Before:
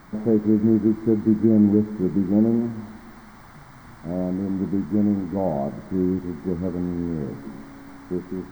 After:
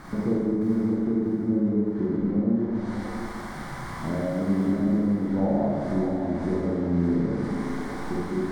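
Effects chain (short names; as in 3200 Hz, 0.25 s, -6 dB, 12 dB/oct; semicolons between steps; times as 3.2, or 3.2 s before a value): treble ducked by the level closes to 1200 Hz, closed at -14.5 dBFS; compressor 6:1, threshold -31 dBFS, peak gain reduction 17.5 dB; thinning echo 0.612 s, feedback 41%, high-pass 550 Hz, level -4 dB; Schroeder reverb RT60 1.7 s, combs from 31 ms, DRR -5 dB; gain +3.5 dB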